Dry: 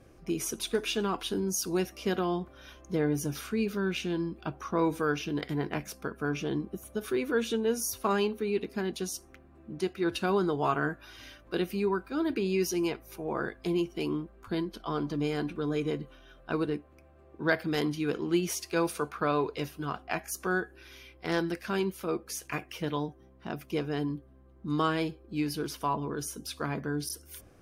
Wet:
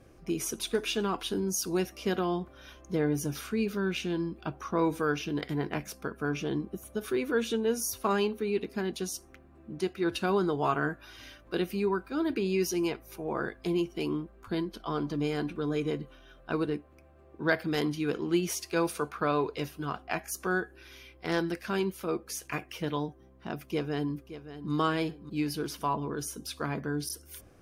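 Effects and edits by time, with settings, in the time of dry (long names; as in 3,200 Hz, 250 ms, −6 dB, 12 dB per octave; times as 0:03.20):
0:23.59–0:24.72: delay throw 570 ms, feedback 35%, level −12.5 dB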